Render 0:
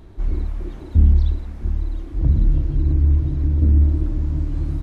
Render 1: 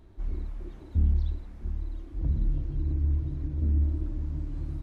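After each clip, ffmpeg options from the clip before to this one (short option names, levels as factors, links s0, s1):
-af "flanger=delay=3.1:depth=7:regen=-74:speed=0.5:shape=sinusoidal,volume=0.473"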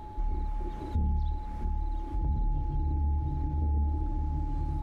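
-af "aeval=exprs='0.188*sin(PI/2*1.58*val(0)/0.188)':c=same,acompressor=threshold=0.0224:ratio=2.5,aeval=exprs='val(0)+0.00562*sin(2*PI*850*n/s)':c=same,volume=1.19"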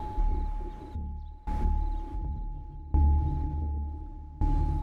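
-af "aeval=exprs='val(0)*pow(10,-22*if(lt(mod(0.68*n/s,1),2*abs(0.68)/1000),1-mod(0.68*n/s,1)/(2*abs(0.68)/1000),(mod(0.68*n/s,1)-2*abs(0.68)/1000)/(1-2*abs(0.68)/1000))/20)':c=same,volume=2.37"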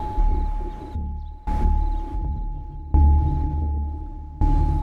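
-af "equalizer=f=700:t=o:w=0.42:g=2.5,volume=2.37"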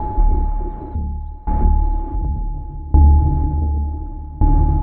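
-af "lowpass=1200,volume=1.88"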